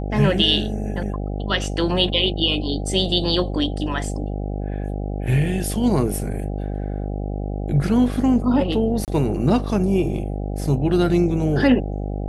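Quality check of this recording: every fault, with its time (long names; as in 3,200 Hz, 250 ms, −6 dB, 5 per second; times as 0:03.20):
mains buzz 50 Hz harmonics 16 −26 dBFS
0:09.05–0:09.08: drop-out 28 ms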